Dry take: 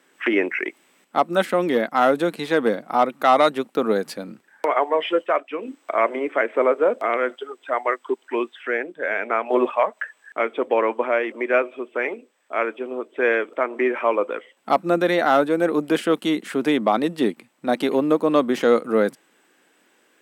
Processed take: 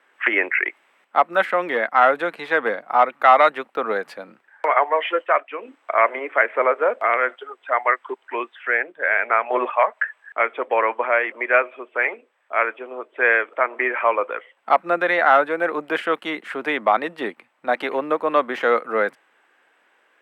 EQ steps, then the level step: dynamic EQ 1900 Hz, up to +5 dB, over -34 dBFS, Q 1.4; three-band isolator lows -17 dB, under 540 Hz, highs -17 dB, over 2800 Hz; +3.5 dB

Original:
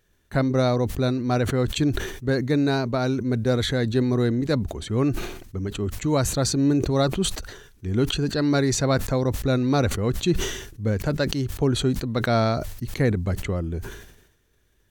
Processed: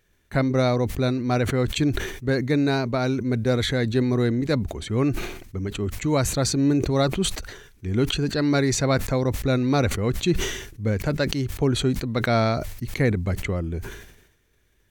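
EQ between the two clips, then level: bell 2200 Hz +5.5 dB 0.41 oct; 0.0 dB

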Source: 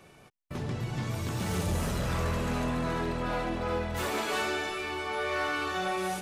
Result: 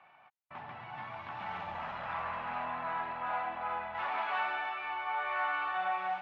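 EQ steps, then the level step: HPF 280 Hz 6 dB/oct; LPF 2700 Hz 24 dB/oct; resonant low shelf 590 Hz -10.5 dB, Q 3; -3.5 dB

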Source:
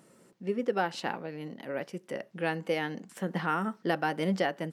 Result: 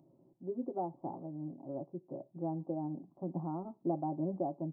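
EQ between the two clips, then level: Gaussian blur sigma 12 samples; fixed phaser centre 310 Hz, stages 8; +1.0 dB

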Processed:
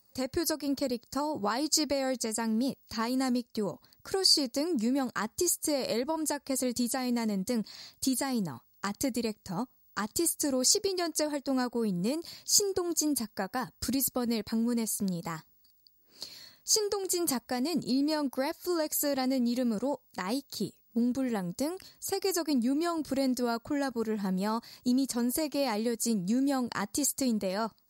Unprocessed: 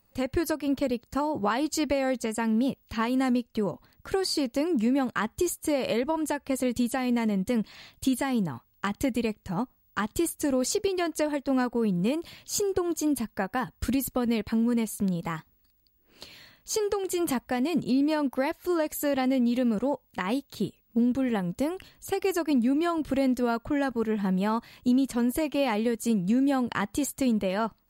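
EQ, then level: HPF 110 Hz 6 dB/oct; resonant high shelf 3900 Hz +7 dB, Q 3; -3.5 dB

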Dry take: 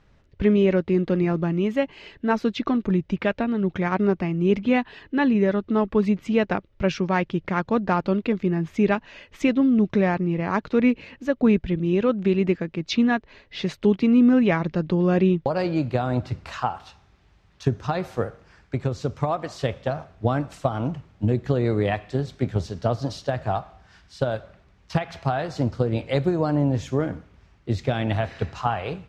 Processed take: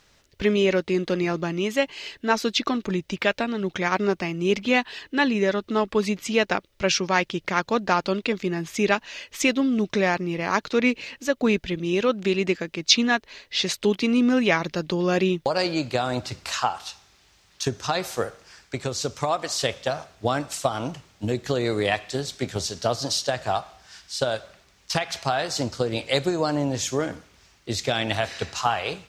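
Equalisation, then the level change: tone controls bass -8 dB, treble +10 dB; high shelf 2000 Hz +9 dB; 0.0 dB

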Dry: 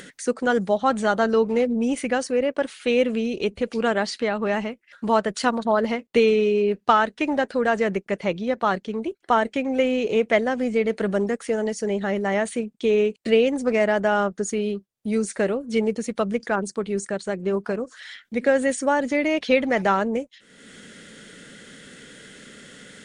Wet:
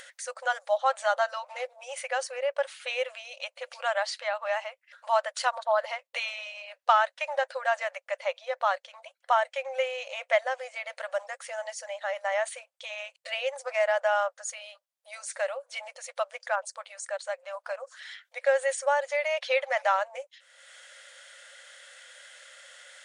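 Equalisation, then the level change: brick-wall FIR high-pass 510 Hz; -3.5 dB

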